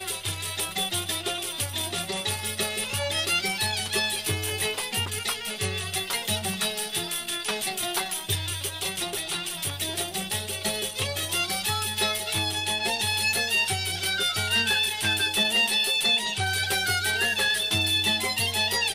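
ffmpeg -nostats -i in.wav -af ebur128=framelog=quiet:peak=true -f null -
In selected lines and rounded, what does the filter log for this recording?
Integrated loudness:
  I:         -25.0 LUFS
  Threshold: -35.0 LUFS
Loudness range:
  LRA:         5.6 LU
  Threshold: -45.1 LUFS
  LRA low:   -27.9 LUFS
  LRA high:  -22.3 LUFS
True peak:
  Peak:      -13.9 dBFS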